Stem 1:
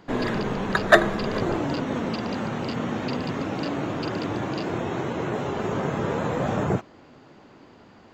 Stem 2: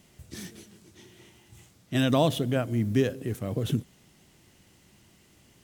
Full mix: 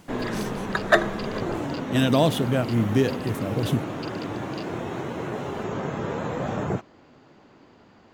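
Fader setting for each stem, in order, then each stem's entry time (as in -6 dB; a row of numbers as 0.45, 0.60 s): -3.0, +3.0 dB; 0.00, 0.00 s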